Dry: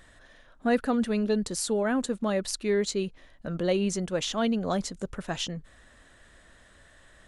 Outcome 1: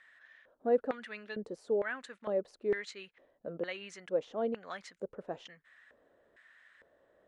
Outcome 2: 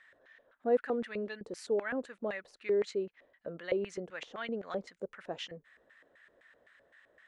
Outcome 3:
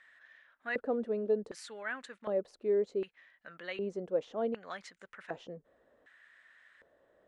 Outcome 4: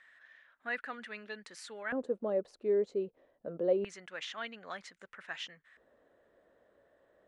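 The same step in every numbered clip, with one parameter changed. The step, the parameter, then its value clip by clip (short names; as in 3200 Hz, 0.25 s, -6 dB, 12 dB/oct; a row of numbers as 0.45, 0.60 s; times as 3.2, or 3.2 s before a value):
LFO band-pass, rate: 1.1, 3.9, 0.66, 0.26 Hz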